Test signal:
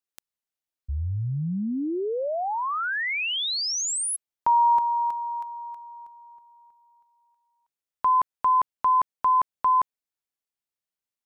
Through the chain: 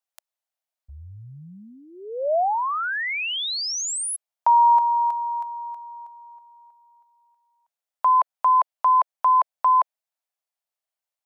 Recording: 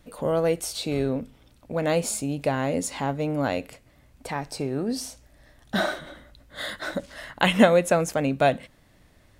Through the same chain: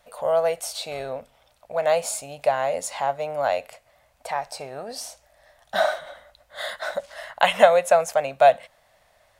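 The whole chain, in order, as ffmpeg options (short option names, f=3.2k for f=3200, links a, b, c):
-af "lowshelf=f=450:t=q:w=3:g=-12.5"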